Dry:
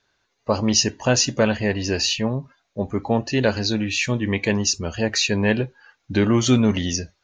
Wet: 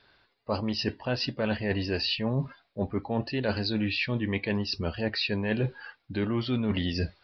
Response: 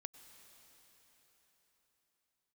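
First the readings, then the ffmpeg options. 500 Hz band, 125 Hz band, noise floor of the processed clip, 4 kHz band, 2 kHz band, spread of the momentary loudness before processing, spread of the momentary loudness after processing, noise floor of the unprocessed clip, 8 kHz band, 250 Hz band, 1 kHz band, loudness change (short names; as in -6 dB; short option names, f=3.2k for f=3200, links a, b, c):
-8.5 dB, -6.5 dB, -72 dBFS, -8.0 dB, -7.5 dB, 9 LU, 5 LU, -71 dBFS, under -30 dB, -8.0 dB, -8.5 dB, -8.5 dB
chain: -af "areverse,acompressor=threshold=-32dB:ratio=12,areverse,aresample=11025,aresample=44100,volume=7dB"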